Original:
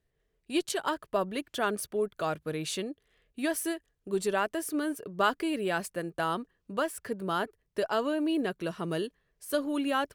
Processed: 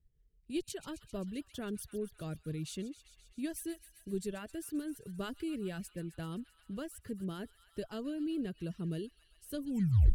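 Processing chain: tape stop at the end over 0.48 s; passive tone stack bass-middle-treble 10-0-1; on a send: thin delay 0.131 s, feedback 73%, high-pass 1500 Hz, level -10.5 dB; on the sum: reverb removal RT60 0.54 s; low shelf 430 Hz +5.5 dB; gain +11 dB

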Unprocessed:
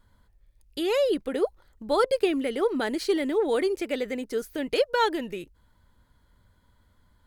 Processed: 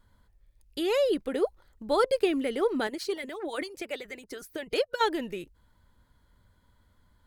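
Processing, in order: 2.87–5.01 harmonic-percussive split harmonic -17 dB; gain -1.5 dB

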